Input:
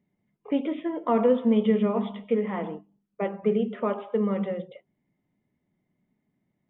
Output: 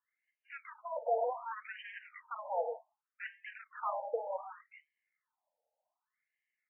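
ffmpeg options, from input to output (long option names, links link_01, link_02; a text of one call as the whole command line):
ffmpeg -i in.wav -af "flanger=delay=6:depth=1.6:regen=-79:speed=1.4:shape=sinusoidal,aresample=11025,asoftclip=type=tanh:threshold=-30dB,aresample=44100,afftfilt=real='re*between(b*sr/1024,630*pow(2300/630,0.5+0.5*sin(2*PI*0.66*pts/sr))/1.41,630*pow(2300/630,0.5+0.5*sin(2*PI*0.66*pts/sr))*1.41)':imag='im*between(b*sr/1024,630*pow(2300/630,0.5+0.5*sin(2*PI*0.66*pts/sr))/1.41,630*pow(2300/630,0.5+0.5*sin(2*PI*0.66*pts/sr))*1.41)':win_size=1024:overlap=0.75,volume=7dB" out.wav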